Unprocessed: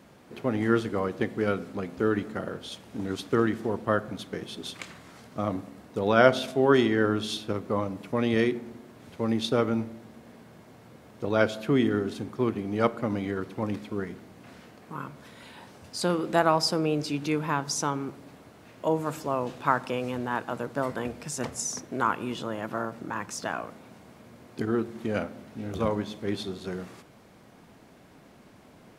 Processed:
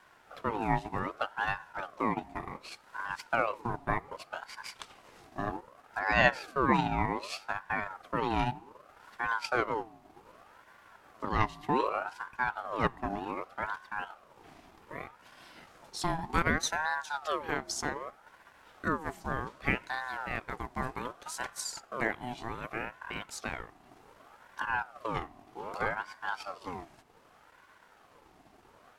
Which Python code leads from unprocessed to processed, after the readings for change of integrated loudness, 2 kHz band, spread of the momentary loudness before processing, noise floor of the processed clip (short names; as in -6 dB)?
-5.5 dB, +1.0 dB, 15 LU, -61 dBFS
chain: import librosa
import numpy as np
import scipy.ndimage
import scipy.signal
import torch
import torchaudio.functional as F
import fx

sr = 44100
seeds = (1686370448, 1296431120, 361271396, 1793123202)

y = fx.transient(x, sr, attack_db=1, sustain_db=-6)
y = fx.ring_lfo(y, sr, carrier_hz=890.0, swing_pct=45, hz=0.65)
y = F.gain(torch.from_numpy(y), -3.0).numpy()